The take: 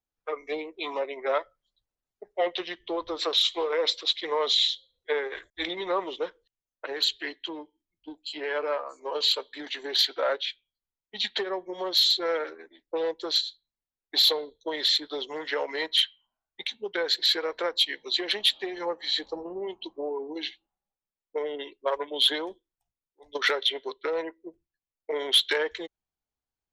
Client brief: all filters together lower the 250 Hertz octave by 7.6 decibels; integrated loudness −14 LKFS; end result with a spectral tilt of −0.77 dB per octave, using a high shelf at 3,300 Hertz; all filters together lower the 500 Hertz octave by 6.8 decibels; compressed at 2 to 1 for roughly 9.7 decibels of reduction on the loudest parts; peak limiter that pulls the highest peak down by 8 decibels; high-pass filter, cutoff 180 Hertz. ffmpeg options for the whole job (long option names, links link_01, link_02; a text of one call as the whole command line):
ffmpeg -i in.wav -af "highpass=180,equalizer=frequency=250:width_type=o:gain=-8,equalizer=frequency=500:width_type=o:gain=-5.5,highshelf=frequency=3300:gain=-3.5,acompressor=threshold=-38dB:ratio=2,volume=25.5dB,alimiter=limit=-3dB:level=0:latency=1" out.wav